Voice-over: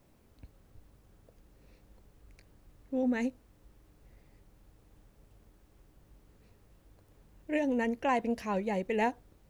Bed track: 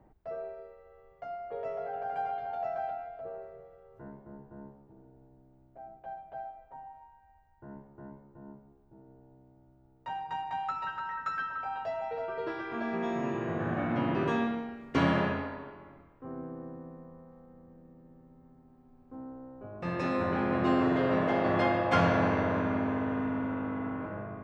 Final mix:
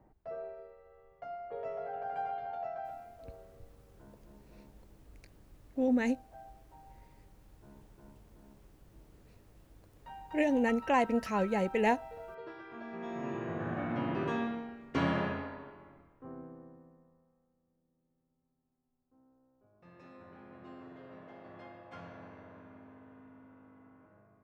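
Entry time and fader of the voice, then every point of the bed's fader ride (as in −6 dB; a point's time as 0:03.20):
2.85 s, +1.5 dB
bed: 0:02.46 −3 dB
0:03.26 −11 dB
0:12.89 −11 dB
0:13.33 −4.5 dB
0:16.26 −4.5 dB
0:17.60 −24 dB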